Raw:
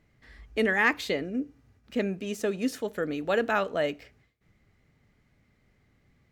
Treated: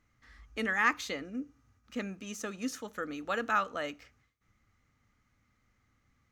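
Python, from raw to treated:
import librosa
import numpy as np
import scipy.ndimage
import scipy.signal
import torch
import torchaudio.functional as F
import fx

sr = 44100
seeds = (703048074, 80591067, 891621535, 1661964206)

y = fx.graphic_eq_31(x, sr, hz=(160, 400, 630, 1250, 6300), db=(-10, -10, -6, 10, 9))
y = y * librosa.db_to_amplitude(-5.5)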